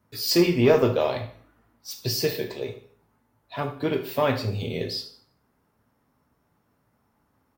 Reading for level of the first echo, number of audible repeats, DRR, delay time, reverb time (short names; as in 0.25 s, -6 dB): -15.0 dB, 1, 4.5 dB, 76 ms, 0.50 s